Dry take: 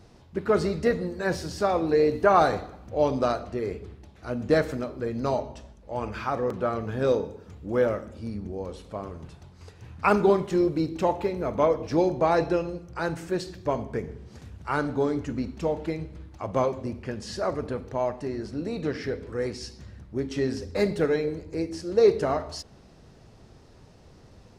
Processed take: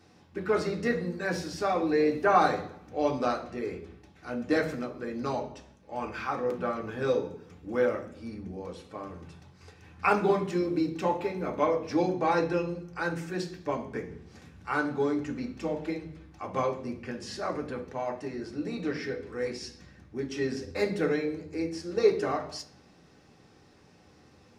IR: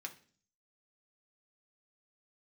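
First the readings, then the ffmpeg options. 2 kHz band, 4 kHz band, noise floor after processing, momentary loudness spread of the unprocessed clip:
0.0 dB, -2.0 dB, -58 dBFS, 16 LU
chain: -filter_complex "[1:a]atrim=start_sample=2205[s0];[0:a][s0]afir=irnorm=-1:irlink=0,volume=1.19"

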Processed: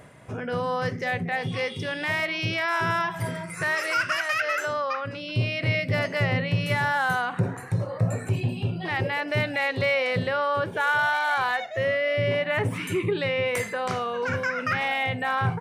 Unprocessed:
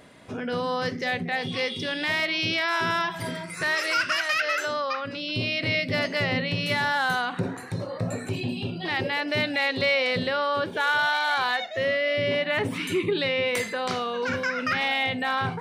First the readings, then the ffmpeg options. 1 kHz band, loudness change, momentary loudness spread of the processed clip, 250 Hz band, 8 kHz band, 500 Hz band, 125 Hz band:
+1.0 dB, 0.0 dB, 6 LU, -1.0 dB, -1.0 dB, +0.5 dB, +6.5 dB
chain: -af "equalizer=f=125:t=o:w=1:g=8,equalizer=f=250:t=o:w=1:g=-7,equalizer=f=4000:t=o:w=1:g=-10,areverse,acompressor=mode=upward:threshold=0.00708:ratio=2.5,areverse,aresample=32000,aresample=44100,volume=1.19"

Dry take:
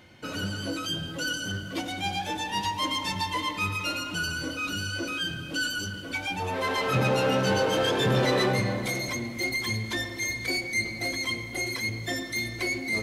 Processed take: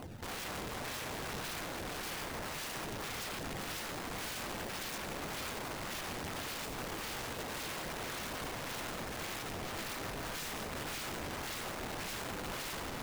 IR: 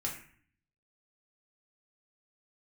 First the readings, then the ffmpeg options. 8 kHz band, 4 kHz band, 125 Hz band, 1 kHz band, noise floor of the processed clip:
-6.5 dB, -12.0 dB, -15.0 dB, -10.5 dB, -42 dBFS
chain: -filter_complex "[0:a]lowpass=1700,acompressor=threshold=0.02:ratio=12,acrusher=samples=24:mix=1:aa=0.000001:lfo=1:lforange=38.4:lforate=1.8,asoftclip=type=tanh:threshold=0.0251,flanger=delay=0.1:depth=6.1:regen=57:speed=0.62:shape=sinusoidal,aeval=exprs='(mod(211*val(0)+1,2)-1)/211':c=same,asplit=2[s0][s1];[1:a]atrim=start_sample=2205,adelay=141[s2];[s1][s2]afir=irnorm=-1:irlink=0,volume=0.237[s3];[s0][s3]amix=inputs=2:normalize=0,volume=3.16"

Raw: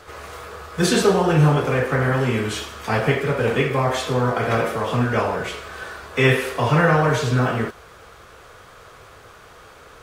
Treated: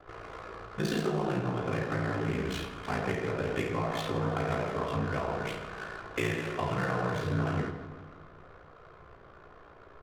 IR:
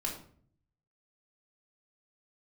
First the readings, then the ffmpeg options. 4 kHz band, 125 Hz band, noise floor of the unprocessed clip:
-13.0 dB, -12.5 dB, -46 dBFS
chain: -filter_complex "[0:a]acompressor=threshold=0.0708:ratio=3,aeval=exprs='val(0)*sin(2*PI*29*n/s)':c=same,aecho=1:1:162|324|486|648|810|972|1134:0.266|0.154|0.0895|0.0519|0.0301|0.0175|0.0101,adynamicsmooth=sensitivity=7.5:basefreq=1100,asplit=2[s0][s1];[1:a]atrim=start_sample=2205[s2];[s1][s2]afir=irnorm=-1:irlink=0,volume=0.794[s3];[s0][s3]amix=inputs=2:normalize=0,volume=0.355"

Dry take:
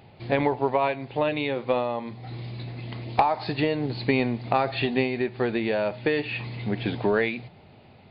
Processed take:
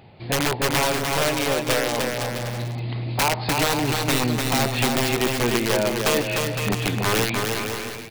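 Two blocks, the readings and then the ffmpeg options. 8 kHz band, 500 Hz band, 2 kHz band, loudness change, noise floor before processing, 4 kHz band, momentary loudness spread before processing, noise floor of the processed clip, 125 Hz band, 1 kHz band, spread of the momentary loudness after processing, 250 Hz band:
no reading, +1.5 dB, +6.0 dB, +4.0 dB, -52 dBFS, +12.0 dB, 12 LU, -34 dBFS, +6.0 dB, +2.0 dB, 7 LU, +2.5 dB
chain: -af "aeval=exprs='(mod(7.5*val(0)+1,2)-1)/7.5':c=same,aecho=1:1:300|510|657|759.9|831.9:0.631|0.398|0.251|0.158|0.1,volume=1.33"

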